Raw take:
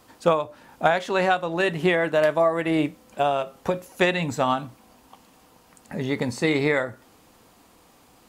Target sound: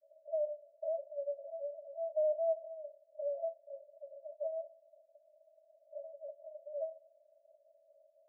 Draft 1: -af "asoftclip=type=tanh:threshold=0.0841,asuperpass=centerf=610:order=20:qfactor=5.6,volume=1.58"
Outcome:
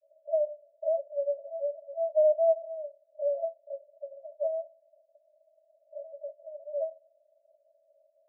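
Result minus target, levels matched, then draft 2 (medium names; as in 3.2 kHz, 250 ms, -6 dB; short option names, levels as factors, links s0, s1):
saturation: distortion -6 dB
-af "asoftclip=type=tanh:threshold=0.0251,asuperpass=centerf=610:order=20:qfactor=5.6,volume=1.58"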